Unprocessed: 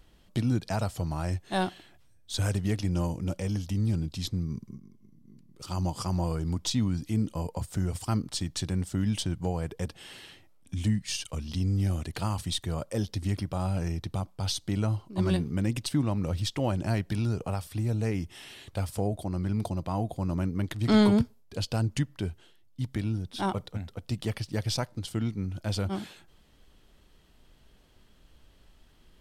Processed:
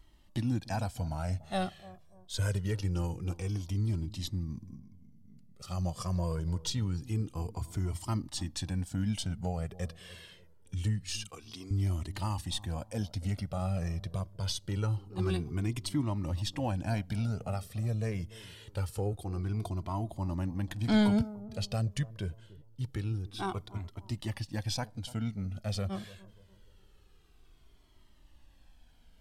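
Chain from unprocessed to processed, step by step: 11.28–11.71 s: high-pass 350 Hz 12 dB/octave; bucket-brigade echo 292 ms, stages 2048, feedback 39%, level -18.5 dB; Shepard-style flanger falling 0.25 Hz

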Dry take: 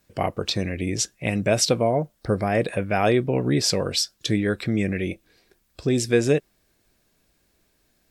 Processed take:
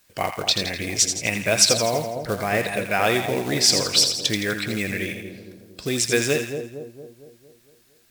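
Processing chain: companded quantiser 6-bit; tilt shelf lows -6.5 dB, about 790 Hz; two-band feedback delay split 840 Hz, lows 229 ms, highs 83 ms, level -7 dB

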